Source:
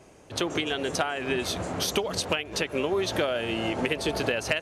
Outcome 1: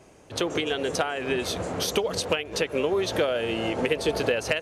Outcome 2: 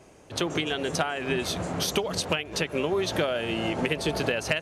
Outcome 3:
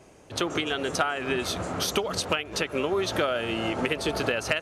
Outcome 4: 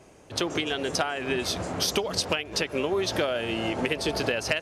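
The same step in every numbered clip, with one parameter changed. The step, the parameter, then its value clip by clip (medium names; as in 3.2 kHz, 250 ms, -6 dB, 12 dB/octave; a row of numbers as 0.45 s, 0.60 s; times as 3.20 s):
dynamic bell, frequency: 480 Hz, 160 Hz, 1.3 kHz, 5.1 kHz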